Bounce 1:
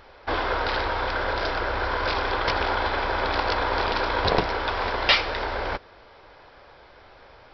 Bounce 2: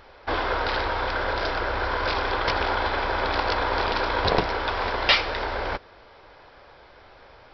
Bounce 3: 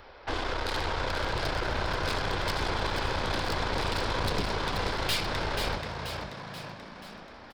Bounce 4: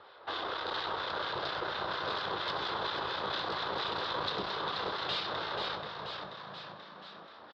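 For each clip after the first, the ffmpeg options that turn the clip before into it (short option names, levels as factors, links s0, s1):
-af anull
-filter_complex "[0:a]acrossover=split=350|3000[s0][s1][s2];[s1]acompressor=threshold=0.0282:ratio=6[s3];[s0][s3][s2]amix=inputs=3:normalize=0,aeval=exprs='(tanh(28.2*val(0)+0.7)-tanh(0.7))/28.2':c=same,asplit=2[s4][s5];[s5]asplit=7[s6][s7][s8][s9][s10][s11][s12];[s6]adelay=483,afreqshift=53,volume=0.501[s13];[s7]adelay=966,afreqshift=106,volume=0.269[s14];[s8]adelay=1449,afreqshift=159,volume=0.146[s15];[s9]adelay=1932,afreqshift=212,volume=0.0785[s16];[s10]adelay=2415,afreqshift=265,volume=0.0427[s17];[s11]adelay=2898,afreqshift=318,volume=0.0229[s18];[s12]adelay=3381,afreqshift=371,volume=0.0124[s19];[s13][s14][s15][s16][s17][s18][s19]amix=inputs=7:normalize=0[s20];[s4][s20]amix=inputs=2:normalize=0,volume=1.41"
-filter_complex "[0:a]asplit=2[s0][s1];[s1]adelay=20,volume=0.266[s2];[s0][s2]amix=inputs=2:normalize=0,acrossover=split=1300[s3][s4];[s3]aeval=exprs='val(0)*(1-0.5/2+0.5/2*cos(2*PI*4.3*n/s))':c=same[s5];[s4]aeval=exprs='val(0)*(1-0.5/2-0.5/2*cos(2*PI*4.3*n/s))':c=same[s6];[s5][s6]amix=inputs=2:normalize=0,highpass=200,equalizer=f=250:t=q:w=4:g=-9,equalizer=f=1200:t=q:w=4:g=6,equalizer=f=2300:t=q:w=4:g=-7,equalizer=f=3700:t=q:w=4:g=8,lowpass=f=4400:w=0.5412,lowpass=f=4400:w=1.3066,volume=0.75"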